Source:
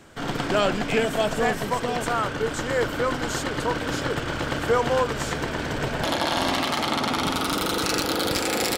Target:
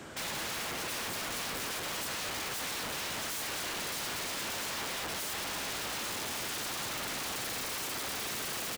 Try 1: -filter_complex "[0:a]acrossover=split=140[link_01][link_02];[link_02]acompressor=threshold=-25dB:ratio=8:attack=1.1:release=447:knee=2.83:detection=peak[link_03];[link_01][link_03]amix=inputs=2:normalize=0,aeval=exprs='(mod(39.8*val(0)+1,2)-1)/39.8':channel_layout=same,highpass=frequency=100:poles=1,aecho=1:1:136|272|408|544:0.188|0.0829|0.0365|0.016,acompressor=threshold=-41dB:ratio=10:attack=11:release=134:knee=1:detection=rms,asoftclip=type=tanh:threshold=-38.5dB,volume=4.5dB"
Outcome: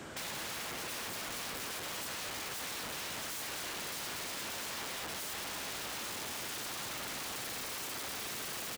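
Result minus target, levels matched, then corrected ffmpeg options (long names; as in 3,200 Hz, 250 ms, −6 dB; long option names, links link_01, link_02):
downward compressor: peak gain reduction +7.5 dB
-filter_complex "[0:a]acrossover=split=140[link_01][link_02];[link_02]acompressor=threshold=-25dB:ratio=8:attack=1.1:release=447:knee=2.83:detection=peak[link_03];[link_01][link_03]amix=inputs=2:normalize=0,aeval=exprs='(mod(39.8*val(0)+1,2)-1)/39.8':channel_layout=same,highpass=frequency=100:poles=1,aecho=1:1:136|272|408|544:0.188|0.0829|0.0365|0.016,asoftclip=type=tanh:threshold=-38.5dB,volume=4.5dB"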